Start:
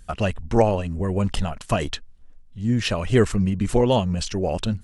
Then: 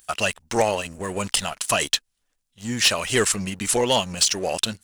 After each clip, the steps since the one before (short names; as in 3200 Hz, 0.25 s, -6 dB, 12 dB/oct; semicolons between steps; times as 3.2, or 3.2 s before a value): tilt +4.5 dB/oct; sample leveller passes 2; gain -4.5 dB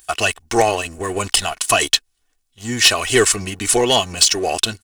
comb 2.7 ms, depth 56%; gain +4.5 dB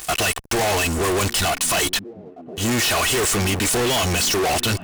fuzz box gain 41 dB, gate -48 dBFS; delay with a stepping band-pass 0.759 s, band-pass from 200 Hz, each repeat 0.7 oct, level -11 dB; sample leveller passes 1; gain -7.5 dB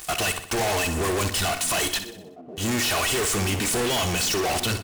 feedback echo 62 ms, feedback 51%, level -10.5 dB; gain -4.5 dB